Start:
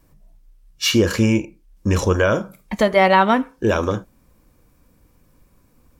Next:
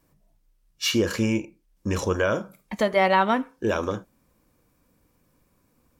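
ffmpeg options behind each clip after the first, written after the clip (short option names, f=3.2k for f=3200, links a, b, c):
-af "lowshelf=f=76:g=-11,volume=-5.5dB"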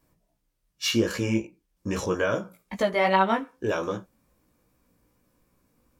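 -af "flanger=delay=15.5:depth=2.3:speed=2.5,volume=1dB"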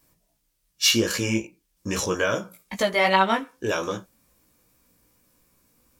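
-af "highshelf=f=2.3k:g=11"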